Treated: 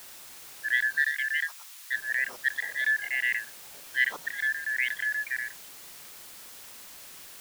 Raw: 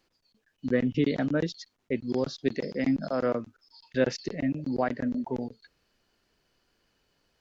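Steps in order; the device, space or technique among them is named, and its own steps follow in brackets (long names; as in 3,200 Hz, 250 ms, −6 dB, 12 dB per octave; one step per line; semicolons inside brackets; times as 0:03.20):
split-band scrambled radio (band-splitting scrambler in four parts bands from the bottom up 4123; band-pass filter 310–2,800 Hz; white noise bed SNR 15 dB)
0:01.03–0:01.94: Bessel high-pass filter 1,300 Hz, order 6
low-shelf EQ 280 Hz −4 dB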